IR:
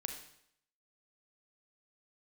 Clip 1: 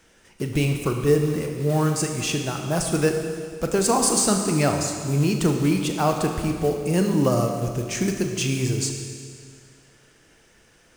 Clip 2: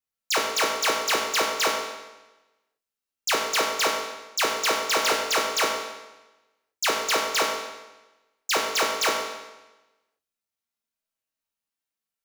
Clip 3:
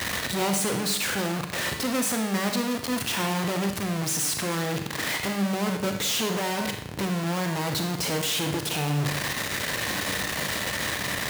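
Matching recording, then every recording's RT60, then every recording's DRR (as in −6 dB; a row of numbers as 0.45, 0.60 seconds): 3; 2.1, 1.1, 0.70 seconds; 3.5, −2.0, 4.5 decibels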